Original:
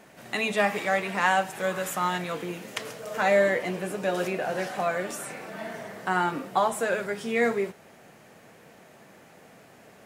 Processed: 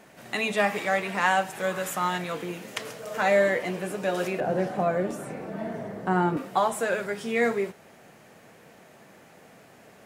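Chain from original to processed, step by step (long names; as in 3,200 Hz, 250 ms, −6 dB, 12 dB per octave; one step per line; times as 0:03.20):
0:04.40–0:06.37: tilt shelving filter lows +9 dB, about 870 Hz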